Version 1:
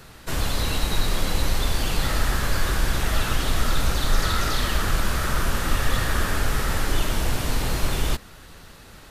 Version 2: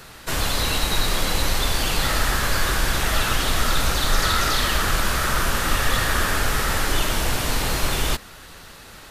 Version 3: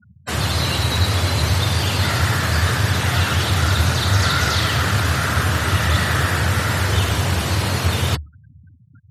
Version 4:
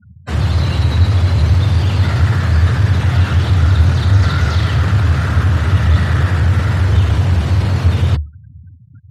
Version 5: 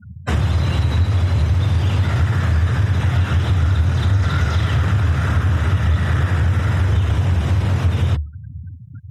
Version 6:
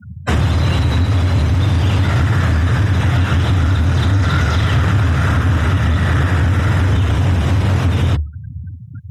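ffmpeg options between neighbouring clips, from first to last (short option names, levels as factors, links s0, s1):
-af "lowshelf=f=420:g=-6.5,volume=1.88"
-af "afftfilt=real='re*gte(hypot(re,im),0.0316)':imag='im*gte(hypot(re,im),0.0316)':win_size=1024:overlap=0.75,acontrast=30,afreqshift=73,volume=0.708"
-filter_complex "[0:a]aemphasis=mode=reproduction:type=bsi,asplit=2[s0][s1];[s1]volume=3.98,asoftclip=hard,volume=0.251,volume=0.562[s2];[s0][s2]amix=inputs=2:normalize=0,volume=0.562"
-af "bandreject=f=4400:w=5.4,acompressor=threshold=0.0794:ratio=3,volume=1.78"
-filter_complex "[0:a]highpass=f=48:p=1,acrossover=split=130[s0][s1];[s0]asoftclip=type=hard:threshold=0.112[s2];[s2][s1]amix=inputs=2:normalize=0,volume=1.78"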